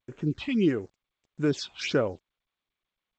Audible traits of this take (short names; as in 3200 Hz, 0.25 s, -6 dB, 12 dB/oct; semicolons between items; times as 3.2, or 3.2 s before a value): a quantiser's noise floor 10-bit, dither none; phasing stages 6, 1.6 Hz, lowest notch 400–4700 Hz; G.722